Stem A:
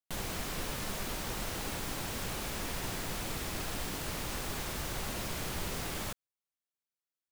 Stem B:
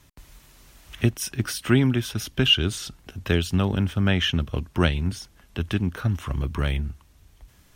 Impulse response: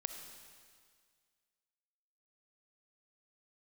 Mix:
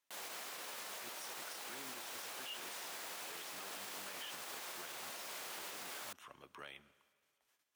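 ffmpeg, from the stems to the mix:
-filter_complex "[0:a]volume=-3dB[link_01];[1:a]agate=range=-10dB:threshold=-53dB:ratio=16:detection=peak,alimiter=limit=-14dB:level=0:latency=1,volume=-19dB,asplit=2[link_02][link_03];[link_03]volume=-8.5dB[link_04];[2:a]atrim=start_sample=2205[link_05];[link_04][link_05]afir=irnorm=-1:irlink=0[link_06];[link_01][link_02][link_06]amix=inputs=3:normalize=0,highpass=580,alimiter=level_in=13dB:limit=-24dB:level=0:latency=1:release=92,volume=-13dB"

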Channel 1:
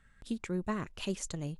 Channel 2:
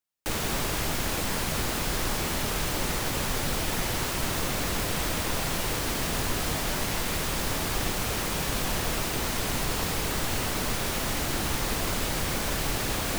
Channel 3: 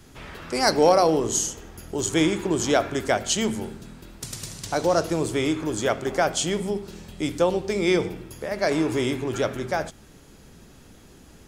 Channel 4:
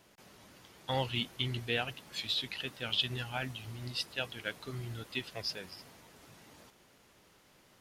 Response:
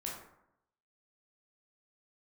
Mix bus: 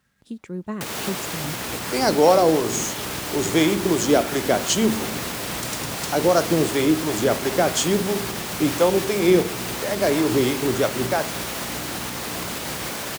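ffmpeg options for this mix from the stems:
-filter_complex "[0:a]lowshelf=frequency=450:gain=11,acrusher=bits=10:mix=0:aa=0.000001,volume=-5dB[link_01];[1:a]alimiter=limit=-22.5dB:level=0:latency=1:release=285,adelay=550,volume=-0.5dB[link_02];[2:a]lowshelf=frequency=470:gain=8,aeval=exprs='val(0)+0.0282*(sin(2*PI*60*n/s)+sin(2*PI*2*60*n/s)/2+sin(2*PI*3*60*n/s)/3+sin(2*PI*4*60*n/s)/4+sin(2*PI*5*60*n/s)/5)':channel_layout=same,acrossover=split=560[link_03][link_04];[link_03]aeval=exprs='val(0)*(1-0.5/2+0.5/2*cos(2*PI*2.9*n/s))':channel_layout=same[link_05];[link_04]aeval=exprs='val(0)*(1-0.5/2-0.5/2*cos(2*PI*2.9*n/s))':channel_layout=same[link_06];[link_05][link_06]amix=inputs=2:normalize=0,adelay=1400,volume=-3dB[link_07];[3:a]volume=-19dB[link_08];[link_01][link_02][link_07][link_08]amix=inputs=4:normalize=0,highpass=86,lowshelf=frequency=130:gain=-10.5,dynaudnorm=framelen=260:gausssize=5:maxgain=6dB"

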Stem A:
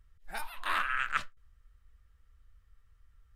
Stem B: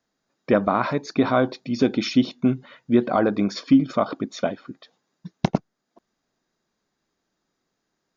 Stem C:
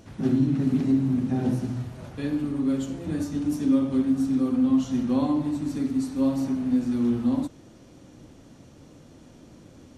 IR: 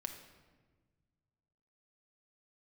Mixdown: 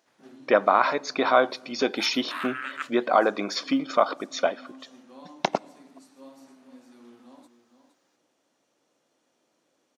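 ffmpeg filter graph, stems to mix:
-filter_complex "[0:a]adelay=1650,volume=-2.5dB[link_01];[1:a]volume=2.5dB,asplit=2[link_02][link_03];[link_03]volume=-15dB[link_04];[2:a]volume=-14.5dB,asplit=2[link_05][link_06];[link_06]volume=-10.5dB[link_07];[3:a]atrim=start_sample=2205[link_08];[link_04][link_08]afir=irnorm=-1:irlink=0[link_09];[link_07]aecho=0:1:464:1[link_10];[link_01][link_02][link_05][link_09][link_10]amix=inputs=5:normalize=0,highpass=550"

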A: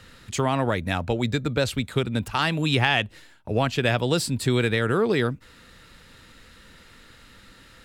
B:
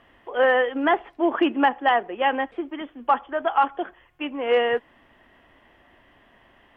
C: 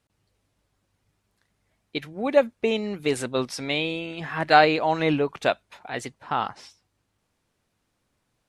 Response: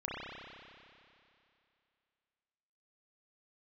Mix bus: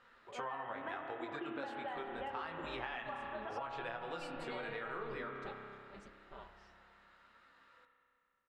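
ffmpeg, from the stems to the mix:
-filter_complex "[0:a]flanger=delay=16.5:depth=4:speed=0.3,bandpass=frequency=1100:width_type=q:width=1.5:csg=0,volume=-2.5dB,asplit=2[link_01][link_02];[link_02]volume=-7.5dB[link_03];[1:a]volume=-17dB,asplit=2[link_04][link_05];[link_05]volume=-6dB[link_06];[2:a]lowpass=4900,aeval=exprs='val(0)*sin(2*PI*170*n/s)':channel_layout=same,equalizer=frequency=1600:width_type=o:width=2.9:gain=-12,volume=-16dB,asplit=2[link_07][link_08];[link_08]volume=-6.5dB[link_09];[link_04][link_07]amix=inputs=2:normalize=0,aecho=1:1:5.1:0.92,acompressor=threshold=-36dB:ratio=6,volume=0dB[link_10];[3:a]atrim=start_sample=2205[link_11];[link_03][link_06][link_09]amix=inputs=3:normalize=0[link_12];[link_12][link_11]afir=irnorm=-1:irlink=0[link_13];[link_01][link_10][link_13]amix=inputs=3:normalize=0,flanger=delay=2:depth=3.3:regen=82:speed=0.77:shape=sinusoidal,acompressor=threshold=-39dB:ratio=6"

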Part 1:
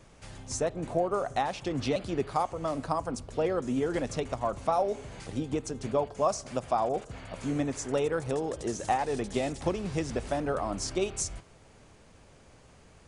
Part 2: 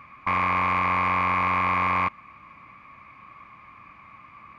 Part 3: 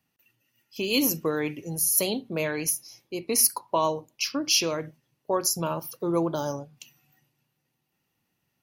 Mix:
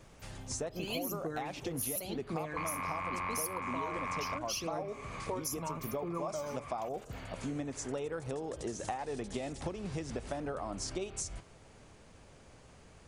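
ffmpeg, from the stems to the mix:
ffmpeg -i stem1.wav -i stem2.wav -i stem3.wav -filter_complex "[0:a]volume=-1dB[link_01];[1:a]acompressor=threshold=-30dB:ratio=6,adelay=2300,volume=2.5dB[link_02];[2:a]aphaser=in_gain=1:out_gain=1:delay=2.3:decay=0.63:speed=0.84:type=triangular,equalizer=frequency=4100:width=1.2:gain=-5,volume=-4dB[link_03];[link_01][link_02][link_03]amix=inputs=3:normalize=0,acompressor=threshold=-35dB:ratio=5" out.wav

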